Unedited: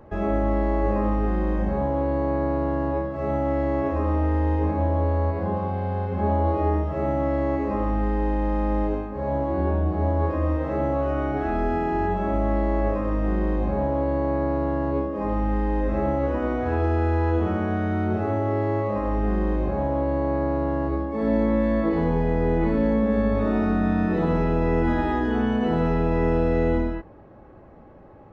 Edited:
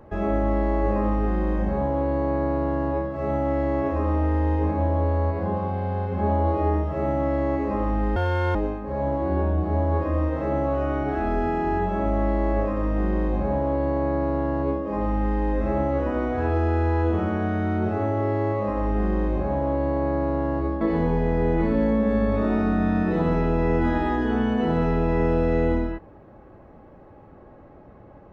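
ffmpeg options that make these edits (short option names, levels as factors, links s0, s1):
-filter_complex "[0:a]asplit=4[s0][s1][s2][s3];[s0]atrim=end=8.164[s4];[s1]atrim=start=8.16:end=8.83,asetpts=PTS-STARTPTS,asetrate=75852,aresample=44100,atrim=end_sample=17178,asetpts=PTS-STARTPTS[s5];[s2]atrim=start=8.826:end=21.092[s6];[s3]atrim=start=21.838[s7];[s4][s5]acrossfade=d=0.004:c1=hsin:c2=hsin[s8];[s8][s6]acrossfade=d=0.004:c1=hsin:c2=hsin[s9];[s9][s7]acrossfade=d=0.004:c1=hsin:c2=hsin"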